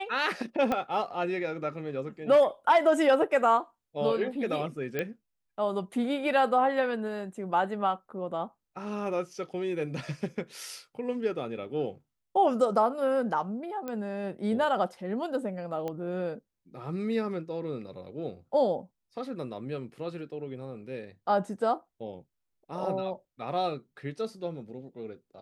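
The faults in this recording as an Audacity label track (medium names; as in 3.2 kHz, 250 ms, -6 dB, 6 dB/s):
0.720000	0.720000	pop -16 dBFS
4.990000	4.990000	pop -17 dBFS
13.880000	13.880000	pop -22 dBFS
15.880000	15.880000	pop -22 dBFS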